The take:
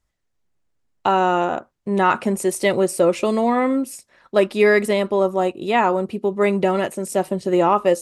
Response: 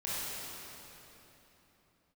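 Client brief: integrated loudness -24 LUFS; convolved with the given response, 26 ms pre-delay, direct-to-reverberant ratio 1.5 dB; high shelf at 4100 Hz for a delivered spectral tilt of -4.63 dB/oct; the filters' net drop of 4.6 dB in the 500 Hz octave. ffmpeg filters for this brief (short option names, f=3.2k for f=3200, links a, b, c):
-filter_complex "[0:a]equalizer=f=500:t=o:g=-6,highshelf=f=4.1k:g=-4,asplit=2[a][b];[1:a]atrim=start_sample=2205,adelay=26[c];[b][c]afir=irnorm=-1:irlink=0,volume=-7dB[d];[a][d]amix=inputs=2:normalize=0,volume=-4dB"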